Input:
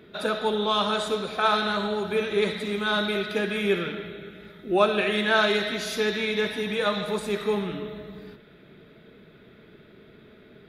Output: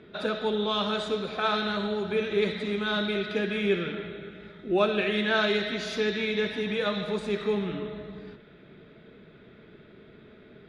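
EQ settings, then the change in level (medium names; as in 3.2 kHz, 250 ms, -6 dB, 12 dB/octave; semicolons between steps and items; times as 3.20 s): dynamic bell 960 Hz, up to -6 dB, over -36 dBFS, Q 0.96; distance through air 100 m; 0.0 dB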